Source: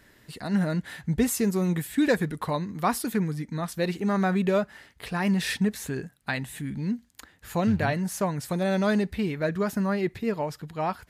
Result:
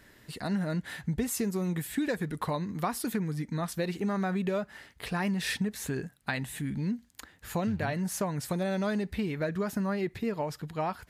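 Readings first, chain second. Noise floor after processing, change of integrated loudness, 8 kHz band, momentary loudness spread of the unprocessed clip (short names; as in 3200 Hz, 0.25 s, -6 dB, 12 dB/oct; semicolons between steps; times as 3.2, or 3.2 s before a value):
-60 dBFS, -5.0 dB, -3.0 dB, 9 LU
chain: compressor, threshold -27 dBFS, peak gain reduction 10 dB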